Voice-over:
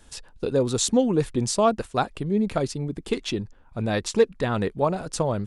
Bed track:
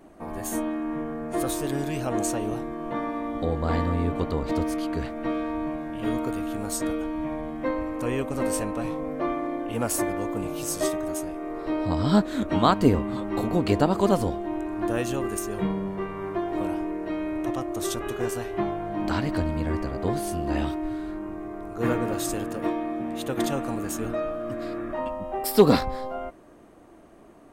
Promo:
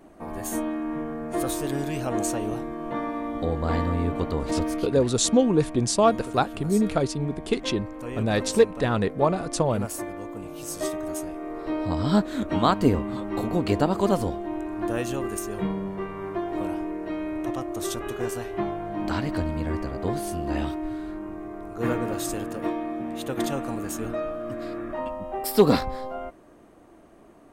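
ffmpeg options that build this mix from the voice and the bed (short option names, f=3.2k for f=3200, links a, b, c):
-filter_complex "[0:a]adelay=4400,volume=1dB[a];[1:a]volume=6dB,afade=t=out:st=4.74:d=0.21:silence=0.446684,afade=t=in:st=10.48:d=0.68:silence=0.501187[b];[a][b]amix=inputs=2:normalize=0"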